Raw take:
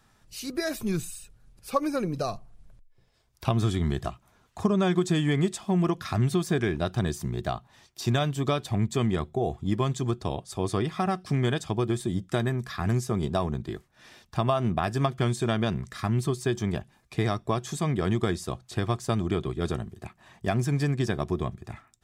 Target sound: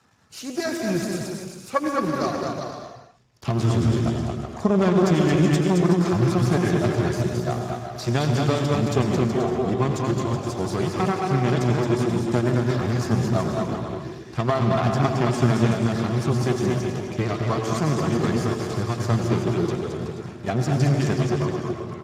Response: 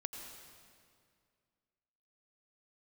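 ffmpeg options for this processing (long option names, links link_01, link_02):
-filter_complex "[0:a]aeval=exprs='if(lt(val(0),0),0.251*val(0),val(0))':channel_layout=same,aecho=1:1:220|374|481.8|557.3|610.1:0.631|0.398|0.251|0.158|0.1[link_01];[1:a]atrim=start_sample=2205,afade=type=out:start_time=0.32:duration=0.01,atrim=end_sample=14553[link_02];[link_01][link_02]afir=irnorm=-1:irlink=0,volume=9dB" -ar 32000 -c:a libspeex -b:a 15k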